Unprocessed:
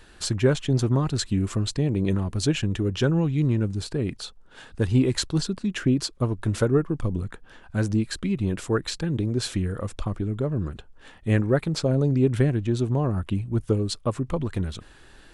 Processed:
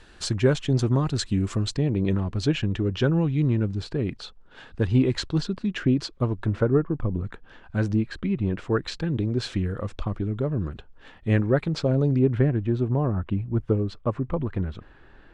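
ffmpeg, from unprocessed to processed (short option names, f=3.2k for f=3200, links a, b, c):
-af "asetnsamples=n=441:p=0,asendcmd='1.77 lowpass f 4200;6.46 lowpass f 1800;7.24 lowpass f 4200;7.95 lowpass f 2600;8.7 lowpass f 4400;12.19 lowpass f 2000',lowpass=7.5k"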